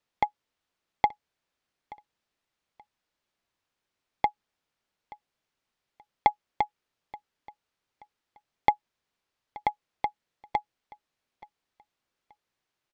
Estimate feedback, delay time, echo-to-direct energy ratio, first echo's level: 28%, 878 ms, -21.0 dB, -21.5 dB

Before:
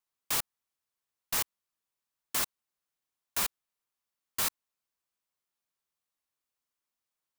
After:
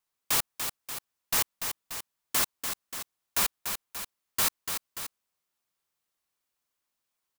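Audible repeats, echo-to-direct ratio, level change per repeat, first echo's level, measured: 2, -5.5 dB, -4.5 dB, -7.0 dB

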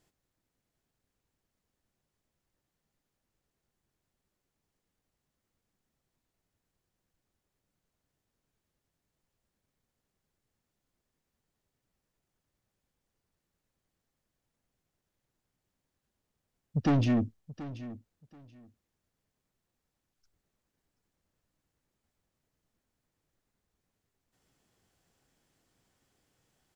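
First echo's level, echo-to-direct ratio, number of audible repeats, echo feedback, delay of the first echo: -15.5 dB, -15.5 dB, 2, 19%, 731 ms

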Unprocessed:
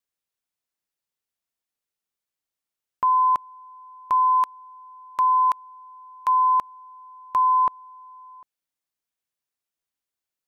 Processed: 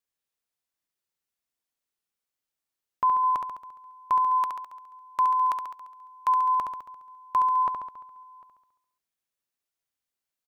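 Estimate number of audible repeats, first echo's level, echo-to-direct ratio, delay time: 7, -5.5 dB, -3.5 dB, 69 ms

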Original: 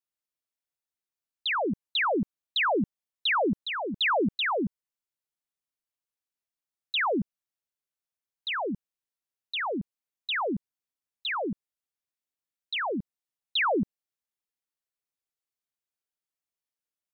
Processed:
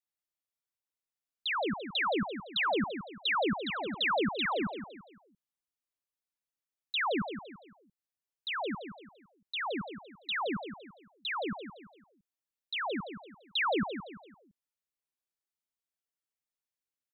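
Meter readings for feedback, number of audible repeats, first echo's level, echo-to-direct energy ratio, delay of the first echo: 37%, 4, -9.0 dB, -8.5 dB, 170 ms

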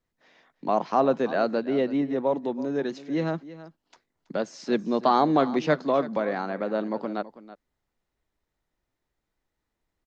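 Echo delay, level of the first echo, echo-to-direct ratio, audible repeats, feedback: 327 ms, -16.0 dB, -16.0 dB, 1, no regular repeats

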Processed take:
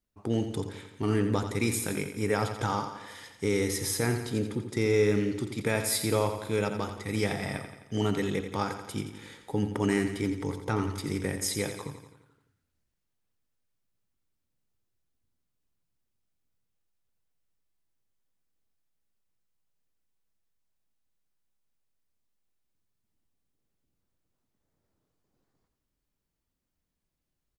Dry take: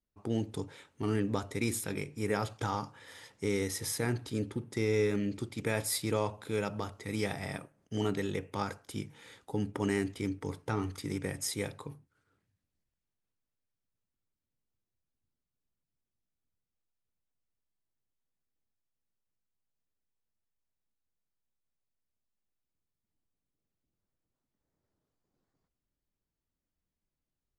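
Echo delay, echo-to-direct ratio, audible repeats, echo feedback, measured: 86 ms, -7.5 dB, 6, 56%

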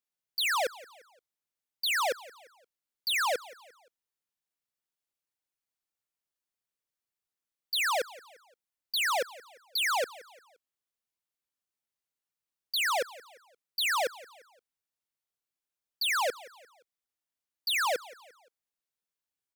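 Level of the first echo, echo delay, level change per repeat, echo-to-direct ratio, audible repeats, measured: -20.0 dB, 174 ms, -7.5 dB, -19.0 dB, 3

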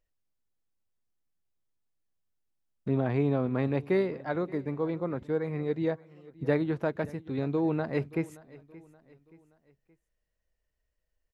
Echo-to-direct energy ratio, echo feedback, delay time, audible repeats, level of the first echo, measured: -20.0 dB, 44%, 575 ms, 2, -21.0 dB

